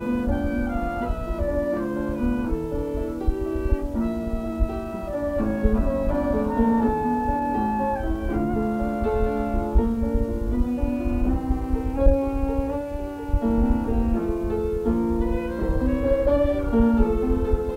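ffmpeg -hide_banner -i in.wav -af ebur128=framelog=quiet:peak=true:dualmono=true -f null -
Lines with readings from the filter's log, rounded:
Integrated loudness:
  I:         -21.5 LUFS
  Threshold: -31.5 LUFS
Loudness range:
  LRA:         3.6 LU
  Threshold: -41.7 LUFS
  LRA low:   -23.6 LUFS
  LRA high:  -20.0 LUFS
True peak:
  Peak:       -4.1 dBFS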